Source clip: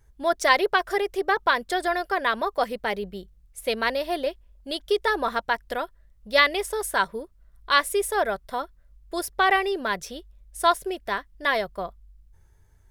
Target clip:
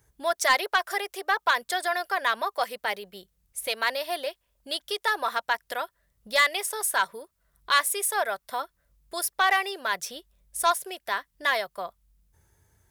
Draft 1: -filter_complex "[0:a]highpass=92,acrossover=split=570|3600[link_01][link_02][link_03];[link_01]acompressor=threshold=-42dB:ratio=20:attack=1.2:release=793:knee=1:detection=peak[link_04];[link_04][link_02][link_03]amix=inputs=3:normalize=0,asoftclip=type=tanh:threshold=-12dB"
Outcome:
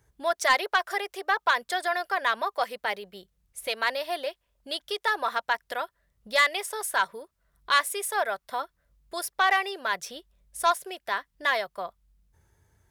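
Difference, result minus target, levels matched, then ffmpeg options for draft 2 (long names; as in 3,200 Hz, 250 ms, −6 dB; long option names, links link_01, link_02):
8,000 Hz band −4.5 dB
-filter_complex "[0:a]highpass=92,highshelf=frequency=6500:gain=8,acrossover=split=570|3600[link_01][link_02][link_03];[link_01]acompressor=threshold=-42dB:ratio=20:attack=1.2:release=793:knee=1:detection=peak[link_04];[link_04][link_02][link_03]amix=inputs=3:normalize=0,asoftclip=type=tanh:threshold=-12dB"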